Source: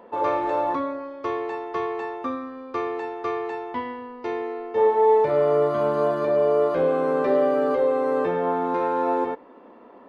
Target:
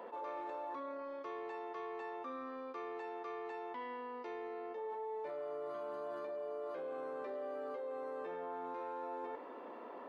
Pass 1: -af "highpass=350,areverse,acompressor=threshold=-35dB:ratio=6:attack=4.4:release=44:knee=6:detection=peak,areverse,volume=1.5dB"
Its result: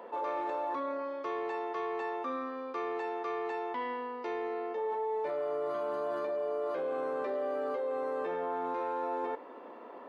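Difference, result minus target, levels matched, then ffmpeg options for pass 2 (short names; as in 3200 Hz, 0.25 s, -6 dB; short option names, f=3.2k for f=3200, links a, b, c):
compressor: peak gain reduction -8.5 dB
-af "highpass=350,areverse,acompressor=threshold=-45.5dB:ratio=6:attack=4.4:release=44:knee=6:detection=peak,areverse,volume=1.5dB"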